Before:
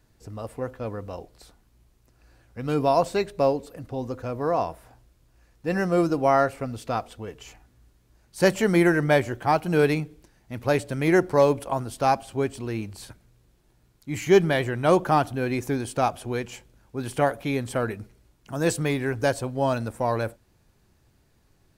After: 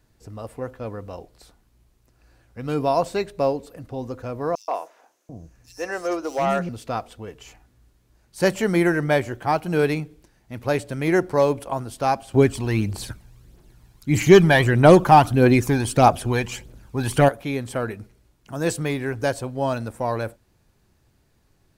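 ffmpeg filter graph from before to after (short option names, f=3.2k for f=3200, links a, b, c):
-filter_complex "[0:a]asettb=1/sr,asplit=3[a][b][c];[a]atrim=end=4.554[d];[b]atrim=start=4.55:end=6.69,asetpts=PTS-STARTPTS,afade=t=in:d=0.004:c=qsin,afade=t=out:st=2.136:d=0.004:c=qsin,equalizer=f=6.2k:w=3.4:g=11.5,volume=16dB,asoftclip=hard,volume=-16dB,acrossover=split=330|4400[e][f][g];[f]adelay=130[h];[e]adelay=740[i];[i][h][g]amix=inputs=3:normalize=0,atrim=end_sample=94374[j];[c]atrim=start=6.686[k];[d][j]acrossfade=d=0.004:c1=hsin:c2=qsin[l];[l][k]acrossfade=d=0.004:c1=qsin:c2=hsin,asettb=1/sr,asplit=3[m][n][o];[m]atrim=end=12.344[p];[n]atrim=start=12.34:end=17.29,asetpts=PTS-STARTPTS,afade=t=in:d=0.004:c=qsin,afade=t=out:st=4.946:d=0.004:c=qsin,acontrast=81,aphaser=in_gain=1:out_gain=1:delay=1.3:decay=0.49:speed=1.6:type=triangular[q];[o]atrim=start=17.286[r];[p][q]acrossfade=d=0.004:c1=hsin:c2=qsin[s];[s][r]acrossfade=d=0.004:c1=qsin:c2=hsin"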